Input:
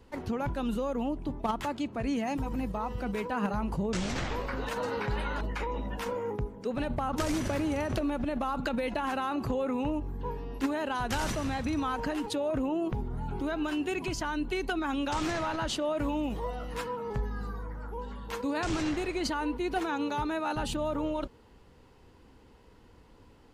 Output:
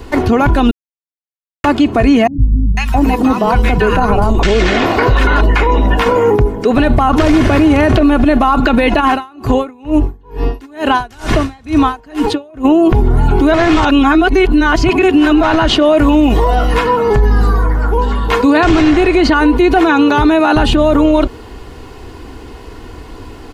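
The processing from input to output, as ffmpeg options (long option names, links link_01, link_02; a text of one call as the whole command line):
ffmpeg -i in.wav -filter_complex "[0:a]asettb=1/sr,asplit=3[link_01][link_02][link_03];[link_01]atrim=end=2.274[link_04];[link_02]atrim=start=2.27:end=5.27,asetpts=PTS-STARTPTS,afade=type=in:duration=0.004:curve=qsin,afade=type=out:start_time=2.996:duration=0.004:curve=qsin,acrossover=split=190|1200[link_05][link_06][link_07];[link_07]adelay=500[link_08];[link_06]adelay=670[link_09];[link_05][link_09][link_08]amix=inputs=3:normalize=0,atrim=end_sample=132300[link_10];[link_03]atrim=start=5.266[link_11];[link_04][link_10]acrossfade=duration=0.004:curve1=hsin:curve2=qsin[link_12];[link_12][link_11]acrossfade=duration=0.004:curve1=qsin:curve2=hsin,asplit=3[link_13][link_14][link_15];[link_13]afade=type=out:start_time=9:duration=0.02[link_16];[link_14]aeval=exprs='val(0)*pow(10,-34*(0.5-0.5*cos(2*PI*2.2*n/s))/20)':channel_layout=same,afade=type=in:start_time=9:duration=0.02,afade=type=out:start_time=12.64:duration=0.02[link_17];[link_15]afade=type=in:start_time=12.64:duration=0.02[link_18];[link_16][link_17][link_18]amix=inputs=3:normalize=0,asplit=5[link_19][link_20][link_21][link_22][link_23];[link_19]atrim=end=0.71,asetpts=PTS-STARTPTS,afade=type=out:start_time=0.706:duration=0.004:curve=hsin[link_24];[link_20]atrim=start=0.71:end=1.64,asetpts=PTS-STARTPTS,volume=0[link_25];[link_21]atrim=start=1.64:end=13.542,asetpts=PTS-STARTPTS,afade=type=in:duration=0.004:curve=hsin[link_26];[link_22]atrim=start=13.538:end=15.432,asetpts=PTS-STARTPTS,areverse[link_27];[link_23]atrim=start=15.428[link_28];[link_24][link_25][link_26]concat=n=3:v=0:a=1[link_29];[link_29][link_27]acrossfade=duration=0.004:curve1=hsin:curve2=hsin[link_30];[link_30][link_28]acrossfade=duration=0.004:curve1=hsin:curve2=hsin,acrossover=split=3900[link_31][link_32];[link_32]acompressor=threshold=-59dB:ratio=4:attack=1:release=60[link_33];[link_31][link_33]amix=inputs=2:normalize=0,aecho=1:1:2.8:0.45,alimiter=level_in=26dB:limit=-1dB:release=50:level=0:latency=1,volume=-1.5dB" out.wav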